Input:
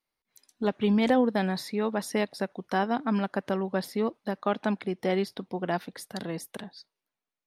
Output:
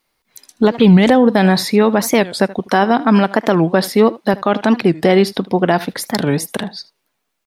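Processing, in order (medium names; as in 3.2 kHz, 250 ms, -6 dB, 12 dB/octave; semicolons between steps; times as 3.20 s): 2.59–4.34 s: Bessel high-pass 170 Hz, order 2; delay 78 ms -21 dB; loudness maximiser +18.5 dB; warped record 45 rpm, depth 250 cents; trim -1 dB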